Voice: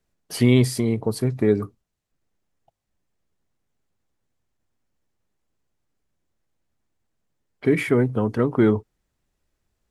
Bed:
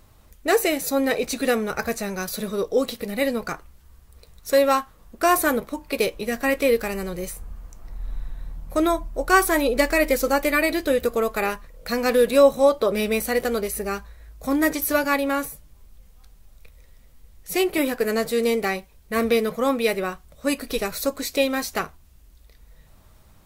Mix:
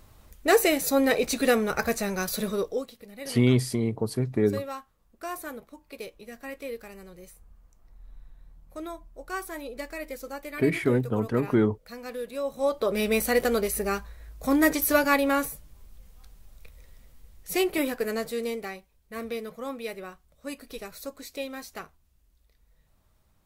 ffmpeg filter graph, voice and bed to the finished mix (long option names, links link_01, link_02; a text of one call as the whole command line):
ffmpeg -i stem1.wav -i stem2.wav -filter_complex "[0:a]adelay=2950,volume=-4.5dB[link_01];[1:a]volume=16dB,afade=type=out:start_time=2.49:duration=0.38:silence=0.149624,afade=type=in:start_time=12.44:duration=0.78:silence=0.149624,afade=type=out:start_time=16.96:duration=1.8:silence=0.223872[link_02];[link_01][link_02]amix=inputs=2:normalize=0" out.wav